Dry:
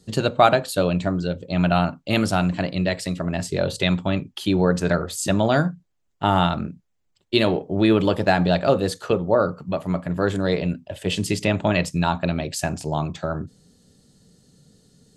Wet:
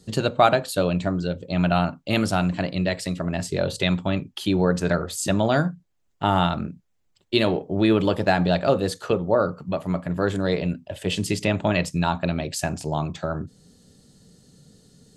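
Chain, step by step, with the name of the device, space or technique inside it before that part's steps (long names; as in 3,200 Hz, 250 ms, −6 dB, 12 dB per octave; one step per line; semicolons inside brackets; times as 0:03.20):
parallel compression (in parallel at −4 dB: downward compressor, threshold −38 dBFS, peak gain reduction 26 dB)
on the sum: level −2 dB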